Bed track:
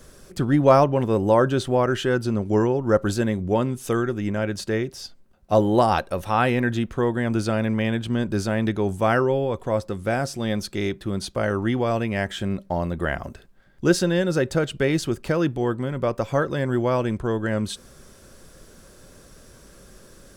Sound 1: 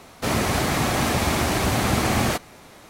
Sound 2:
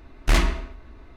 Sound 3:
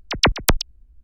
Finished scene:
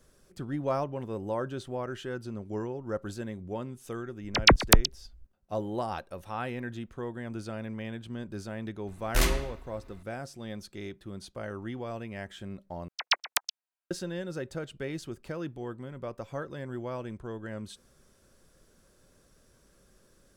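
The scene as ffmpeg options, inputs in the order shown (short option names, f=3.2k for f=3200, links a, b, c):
-filter_complex "[3:a]asplit=2[a][b];[0:a]volume=-14.5dB[c];[2:a]aemphasis=mode=production:type=50fm[d];[b]highpass=f=800:w=0.5412,highpass=f=800:w=1.3066[e];[c]asplit=2[f][g];[f]atrim=end=12.884[h];[e]atrim=end=1.03,asetpts=PTS-STARTPTS,volume=-9dB[i];[g]atrim=start=13.906[j];[a]atrim=end=1.03,asetpts=PTS-STARTPTS,volume=-2dB,afade=t=in:d=0.004:c=hsin,afade=t=out:st=1.026:d=0.004:c=hsin,adelay=4240[k];[d]atrim=end=1.16,asetpts=PTS-STARTPTS,volume=-6.5dB,afade=t=in:d=0.004:c=hsin,afade=t=out:st=1.156:d=0.004:c=hsin,adelay=8870[l];[h][i]acrossfade=d=0.004:c1=hsin:c2=hsin[m];[m][j]acrossfade=d=0.004:c1=hsin:c2=hsin[n];[n][k][l]amix=inputs=3:normalize=0"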